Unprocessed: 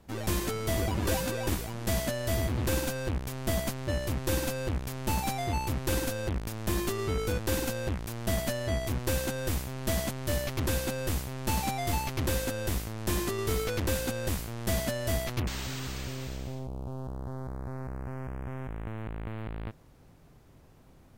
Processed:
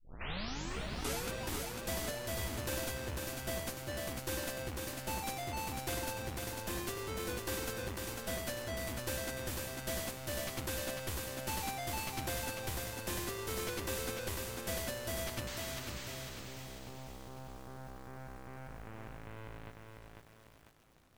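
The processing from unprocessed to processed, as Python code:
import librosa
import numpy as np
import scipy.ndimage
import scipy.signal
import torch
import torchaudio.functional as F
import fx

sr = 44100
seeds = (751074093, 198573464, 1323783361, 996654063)

y = fx.tape_start_head(x, sr, length_s=1.31)
y = fx.low_shelf(y, sr, hz=470.0, db=-7.5)
y = fx.echo_crushed(y, sr, ms=498, feedback_pct=55, bits=9, wet_db=-3.5)
y = y * 10.0 ** (-6.0 / 20.0)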